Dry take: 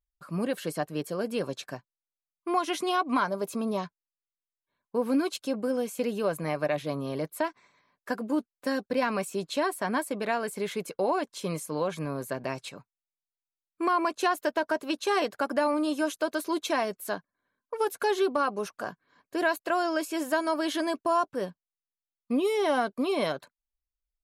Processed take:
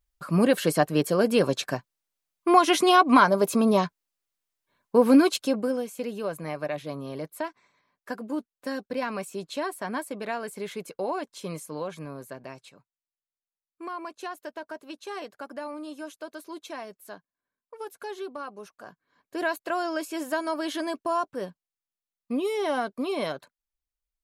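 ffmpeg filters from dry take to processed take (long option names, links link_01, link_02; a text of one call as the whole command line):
ffmpeg -i in.wav -af "volume=18dB,afade=type=out:start_time=5.15:duration=0.72:silence=0.251189,afade=type=out:start_time=11.58:duration=1.13:silence=0.421697,afade=type=in:start_time=18.83:duration=0.62:silence=0.354813" out.wav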